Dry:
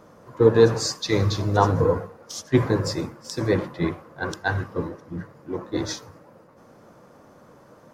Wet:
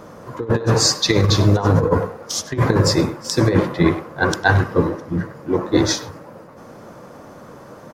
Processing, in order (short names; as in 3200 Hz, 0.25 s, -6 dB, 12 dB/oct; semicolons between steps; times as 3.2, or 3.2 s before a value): negative-ratio compressor -22 dBFS, ratio -0.5; speakerphone echo 0.1 s, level -13 dB; gain +8 dB